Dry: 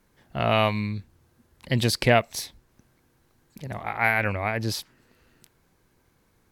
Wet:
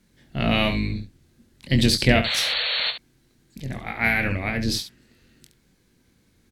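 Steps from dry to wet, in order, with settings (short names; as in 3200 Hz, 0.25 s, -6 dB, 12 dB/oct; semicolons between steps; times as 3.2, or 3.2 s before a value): octaver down 2 oct, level -1 dB; painted sound noise, 2.24–2.91, 460–4500 Hz -28 dBFS; graphic EQ 125/250/1000/2000/4000/8000 Hz +4/+8/-6/+4/+7/+5 dB; early reflections 22 ms -7.5 dB, 70 ms -10 dB; gain -3 dB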